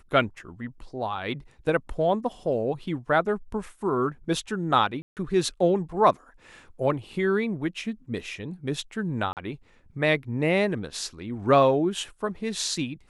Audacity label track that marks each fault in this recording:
5.020000	5.170000	gap 0.148 s
9.330000	9.370000	gap 38 ms

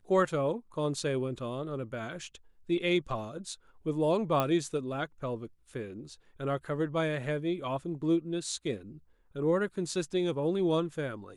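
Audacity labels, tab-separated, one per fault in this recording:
4.400000	4.400000	pop -15 dBFS

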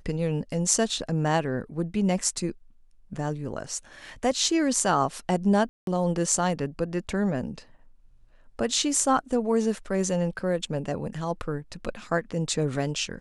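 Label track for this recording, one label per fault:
5.690000	5.870000	gap 0.182 s

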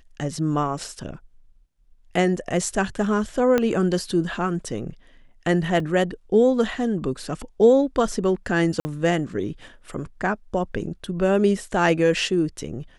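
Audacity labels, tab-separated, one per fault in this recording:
3.580000	3.580000	pop -8 dBFS
5.800000	5.800000	gap 2.8 ms
8.800000	8.850000	gap 50 ms

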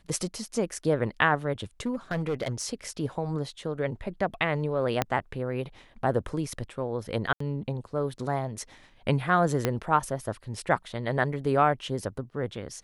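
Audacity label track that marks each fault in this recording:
1.860000	2.650000	clipped -24 dBFS
5.020000	5.020000	pop -9 dBFS
7.330000	7.400000	gap 74 ms
9.650000	9.650000	pop -10 dBFS

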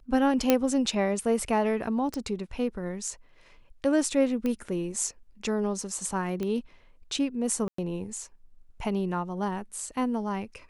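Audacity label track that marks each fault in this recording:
0.500000	0.500000	pop -6 dBFS
2.140000	2.140000	pop
4.460000	4.460000	pop -18 dBFS
6.430000	6.430000	pop -20 dBFS
7.680000	7.780000	gap 0.104 s

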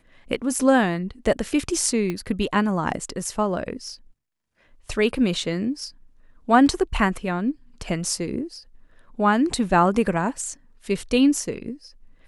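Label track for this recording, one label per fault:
2.100000	2.100000	pop -15 dBFS

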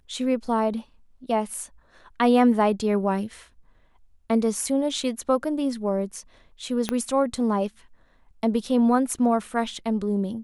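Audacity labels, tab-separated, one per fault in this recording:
6.890000	6.890000	pop -10 dBFS

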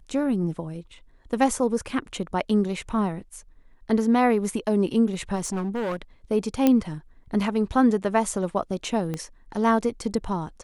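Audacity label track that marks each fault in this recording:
5.350000	5.970000	clipped -24 dBFS
6.670000	6.670000	pop -7 dBFS
9.140000	9.140000	pop -17 dBFS

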